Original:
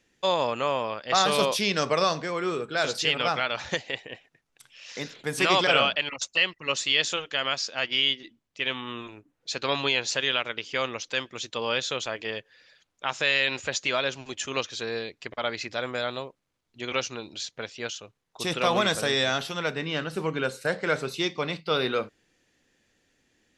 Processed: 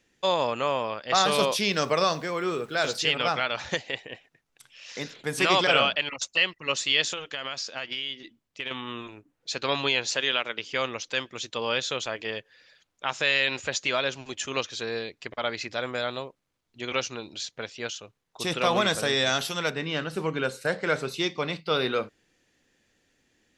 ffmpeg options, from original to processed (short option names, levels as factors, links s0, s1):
-filter_complex "[0:a]asettb=1/sr,asplit=3[s0][s1][s2];[s0]atrim=end=1.504[s3];[s1]atrim=start=1.5:end=2.96,asetpts=PTS-STARTPTS,afade=t=in:d=0.004:c=qsin,afade=t=out:st=1.456:d=0.004:c=qsin,aeval=exprs='val(0)*gte(abs(val(0)),0.00316)':c=same[s4];[s2]atrim=start=2.956[s5];[s3][s4]acrossfade=d=0.004:c1=hsin:c2=qsin[s6];[s6][s5]acrossfade=d=0.004:c1=qsin:c2=hsin,asettb=1/sr,asplit=3[s7][s8][s9];[s7]atrim=end=7.104[s10];[s8]atrim=start=7.1:end=8.71,asetpts=PTS-STARTPTS,afade=t=in:d=0.004:c=qsin,afade=t=out:st=1.606:d=0.004:c=qsin,acompressor=threshold=0.0398:ratio=6:attack=3.2:release=140:knee=1:detection=peak[s11];[s9]atrim=start=8.706[s12];[s10][s11]acrossfade=d=0.004:c1=hsin:c2=qsin[s13];[s13][s12]acrossfade=d=0.004:c1=qsin:c2=hsin,asettb=1/sr,asplit=3[s14][s15][s16];[s14]atrim=end=10.144[s17];[s15]atrim=start=10.14:end=10.59,asetpts=PTS-STARTPTS,afade=t=in:d=0.004:c=qsin,afade=t=out:st=0.446:d=0.004:c=qsin,highpass=170[s18];[s16]atrim=start=10.586[s19];[s17][s18]acrossfade=d=0.004:c1=hsin:c2=qsin[s20];[s20][s19]acrossfade=d=0.004:c1=qsin:c2=hsin,asettb=1/sr,asplit=3[s21][s22][s23];[s21]atrim=end=19.264[s24];[s22]atrim=start=19.26:end=19.7,asetpts=PTS-STARTPTS,afade=t=in:d=0.004:c=qsin,afade=t=out:st=0.436:d=0.004:c=qsin,highshelf=f=5900:g=12[s25];[s23]atrim=start=19.696[s26];[s24][s25]acrossfade=d=0.004:c1=hsin:c2=qsin[s27];[s27][s26]acrossfade=d=0.004:c1=qsin:c2=hsin"